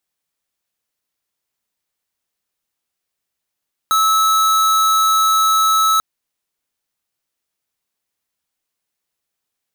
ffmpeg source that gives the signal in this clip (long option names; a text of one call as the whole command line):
ffmpeg -f lavfi -i "aevalsrc='0.2*(2*lt(mod(1300*t,1),0.5)-1)':duration=2.09:sample_rate=44100" out.wav